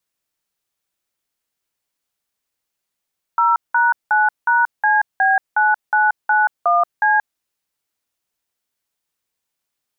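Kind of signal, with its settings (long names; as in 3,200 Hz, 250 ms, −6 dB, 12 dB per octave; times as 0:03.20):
touch tones "0#9#CB9991C", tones 180 ms, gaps 184 ms, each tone −14.5 dBFS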